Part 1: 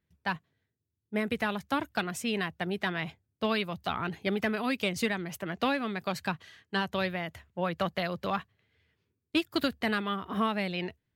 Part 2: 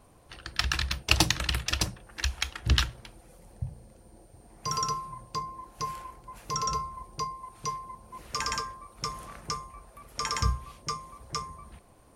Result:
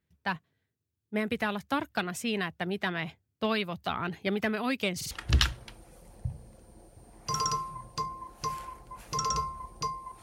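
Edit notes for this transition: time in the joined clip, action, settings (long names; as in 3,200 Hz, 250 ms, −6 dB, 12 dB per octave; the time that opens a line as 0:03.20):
part 1
0:04.96: stutter in place 0.05 s, 3 plays
0:05.11: continue with part 2 from 0:02.48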